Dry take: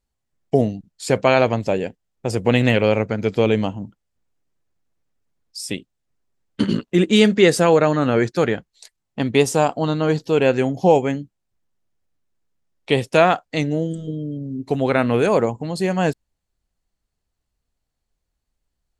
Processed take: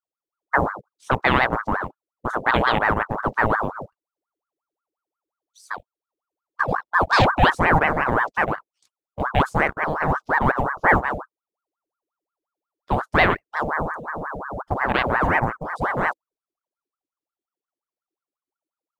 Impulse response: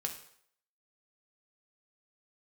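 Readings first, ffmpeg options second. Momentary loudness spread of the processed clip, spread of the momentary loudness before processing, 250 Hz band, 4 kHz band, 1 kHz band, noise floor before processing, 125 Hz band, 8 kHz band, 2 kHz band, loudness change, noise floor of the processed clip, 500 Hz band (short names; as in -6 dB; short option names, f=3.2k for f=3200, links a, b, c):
13 LU, 14 LU, -8.5 dB, -5.0 dB, +4.0 dB, -78 dBFS, -4.5 dB, under -15 dB, +5.5 dB, -2.5 dB, under -85 dBFS, -8.5 dB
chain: -af "acrusher=bits=6:mode=log:mix=0:aa=0.000001,afwtdn=0.0708,aeval=exprs='val(0)*sin(2*PI*860*n/s+860*0.65/5.6*sin(2*PI*5.6*n/s))':c=same"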